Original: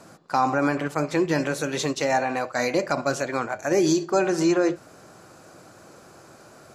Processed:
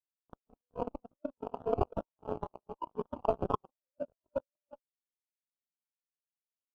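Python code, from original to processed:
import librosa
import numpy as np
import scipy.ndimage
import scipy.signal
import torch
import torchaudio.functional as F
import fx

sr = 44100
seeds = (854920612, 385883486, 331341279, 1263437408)

y = fx.pitch_heads(x, sr, semitones=9.0)
y = fx.over_compress(y, sr, threshold_db=-30.0, ratio=-0.5)
y = fx.cheby_harmonics(y, sr, harmonics=(7,), levels_db=(-16,), full_scale_db=-11.5)
y = fx.sample_hold(y, sr, seeds[0], rate_hz=2000.0, jitter_pct=20)
y = fx.spectral_expand(y, sr, expansion=2.5)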